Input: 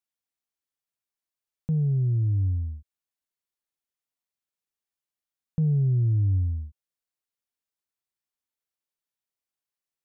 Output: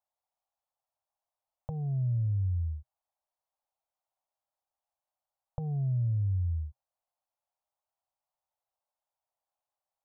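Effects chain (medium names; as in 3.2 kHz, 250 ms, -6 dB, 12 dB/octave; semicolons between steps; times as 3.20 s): FFT filter 120 Hz 0 dB, 220 Hz -30 dB, 390 Hz -15 dB, 560 Hz +9 dB, 800 Hz +14 dB, 1.8 kHz -8 dB; compression, threshold -27 dBFS, peak gain reduction 6.5 dB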